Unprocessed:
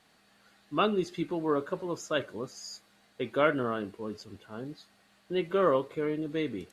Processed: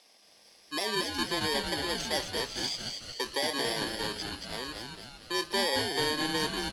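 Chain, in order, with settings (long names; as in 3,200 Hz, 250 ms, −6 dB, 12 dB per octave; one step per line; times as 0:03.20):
samples in bit-reversed order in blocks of 32 samples
parametric band 4,000 Hz +9.5 dB 0.83 octaves
in parallel at −1.5 dB: downward compressor, threshold −36 dBFS, peak gain reduction 16.5 dB
on the sum: brickwall limiter −17.5 dBFS, peak gain reduction 9 dB
band-pass filter 500–7,100 Hz
on a send: echo with shifted repeats 225 ms, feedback 55%, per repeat −130 Hz, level −4.5 dB
on the sum: level +2 dB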